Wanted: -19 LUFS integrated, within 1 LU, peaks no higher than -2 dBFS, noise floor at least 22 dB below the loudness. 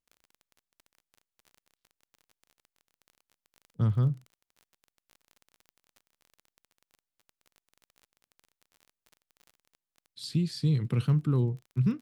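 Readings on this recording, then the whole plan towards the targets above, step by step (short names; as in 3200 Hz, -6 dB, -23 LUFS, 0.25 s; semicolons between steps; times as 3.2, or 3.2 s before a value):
ticks 26/s; loudness -29.0 LUFS; peak -16.0 dBFS; loudness target -19.0 LUFS
-> de-click; gain +10 dB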